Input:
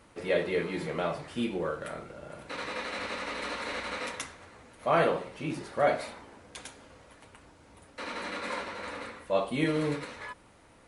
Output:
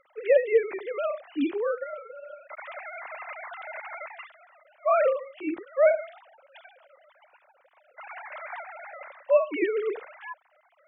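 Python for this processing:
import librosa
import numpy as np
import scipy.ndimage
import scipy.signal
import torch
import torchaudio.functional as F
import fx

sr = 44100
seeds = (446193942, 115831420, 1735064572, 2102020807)

y = fx.sine_speech(x, sr)
y = y * librosa.db_to_amplitude(4.0)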